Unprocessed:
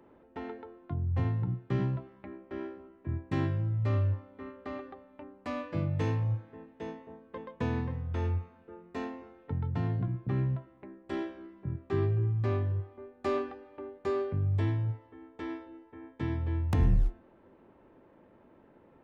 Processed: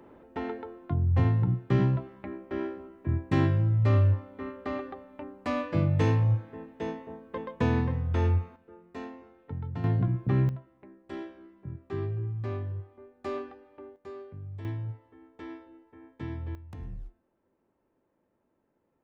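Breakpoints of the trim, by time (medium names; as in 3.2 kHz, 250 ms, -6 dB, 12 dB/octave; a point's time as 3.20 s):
+6 dB
from 8.56 s -3 dB
from 9.84 s +5.5 dB
from 10.49 s -4 dB
from 13.96 s -12 dB
from 14.65 s -4 dB
from 16.55 s -16 dB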